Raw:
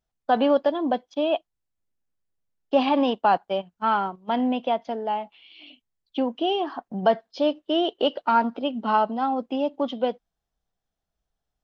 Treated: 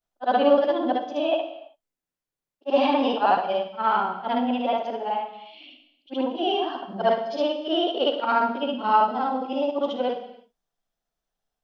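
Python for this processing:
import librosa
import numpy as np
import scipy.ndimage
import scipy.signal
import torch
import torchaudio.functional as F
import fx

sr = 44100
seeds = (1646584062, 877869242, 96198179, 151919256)

y = fx.frame_reverse(x, sr, frame_ms=153.0)
y = fx.peak_eq(y, sr, hz=69.0, db=-11.5, octaves=2.3)
y = fx.rev_gated(y, sr, seeds[0], gate_ms=350, shape='falling', drr_db=7.0)
y = y * librosa.db_to_amplitude(3.5)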